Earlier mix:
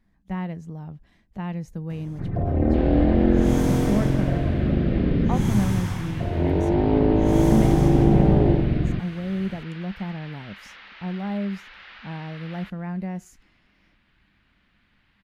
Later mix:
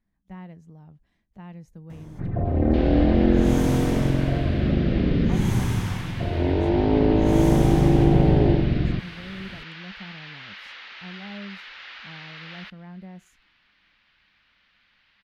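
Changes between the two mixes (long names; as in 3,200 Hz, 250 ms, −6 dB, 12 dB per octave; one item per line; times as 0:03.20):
speech −11.0 dB
second sound: add high-shelf EQ 2,700 Hz +9.5 dB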